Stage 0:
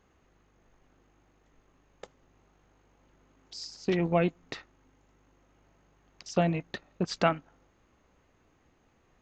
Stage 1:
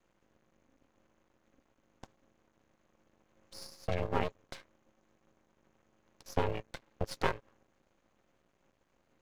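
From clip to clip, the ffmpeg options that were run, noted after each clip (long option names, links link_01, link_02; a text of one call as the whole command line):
ffmpeg -i in.wav -af "aeval=exprs='val(0)*sin(2*PI*270*n/s)':channel_layout=same,aeval=exprs='max(val(0),0)':channel_layout=same" out.wav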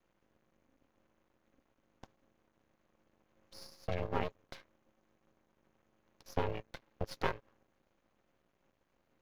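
ffmpeg -i in.wav -af "equalizer=frequency=8200:width=2.2:gain=-9,volume=-3dB" out.wav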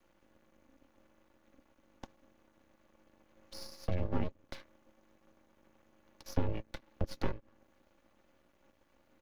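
ffmpeg -i in.wav -filter_complex "[0:a]aecho=1:1:3.5:0.39,acrossover=split=340[link_01][link_02];[link_02]acompressor=threshold=-51dB:ratio=3[link_03];[link_01][link_03]amix=inputs=2:normalize=0,volume=6dB" out.wav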